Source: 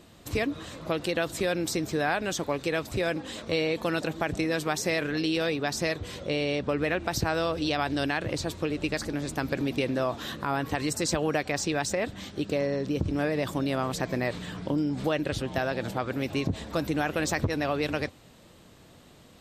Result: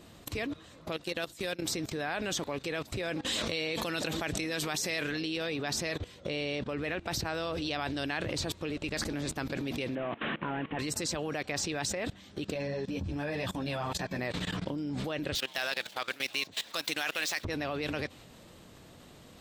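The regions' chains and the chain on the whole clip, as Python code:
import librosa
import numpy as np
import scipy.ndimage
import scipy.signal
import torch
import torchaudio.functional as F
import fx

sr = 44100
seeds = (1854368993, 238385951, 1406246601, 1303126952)

y = fx.chain(x, sr, fx.high_shelf(hz=4600.0, db=9.5),
    fx.level_steps(step_db=14),
    fx.overload_stage(gain_db=21.0), at=(0.92, 1.62))
y = fx.chain(y, sr, fx.high_shelf(hz=2400.0, db=7.5),
    fx.pre_swell(db_per_s=82.0), at=(3.23, 5.17))
y = fx.chain(y, sr, fx.delta_mod(bps=16000, step_db=-36.0),
    fx.low_shelf_res(hz=130.0, db=-9.0, q=1.5), at=(9.95, 10.79))
y = fx.chain(y, sr, fx.high_shelf(hz=5500.0, db=-2.0),
    fx.comb(ms=1.2, depth=0.31),
    fx.ensemble(), at=(12.54, 14.19))
y = fx.chain(y, sr, fx.median_filter(points=5),
    fx.highpass(hz=1300.0, slope=6),
    fx.high_shelf(hz=2500.0, db=12.0), at=(15.35, 17.45))
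y = fx.level_steps(y, sr, step_db=19)
y = fx.dynamic_eq(y, sr, hz=3100.0, q=0.88, threshold_db=-57.0, ratio=4.0, max_db=4)
y = y * 10.0 ** (3.5 / 20.0)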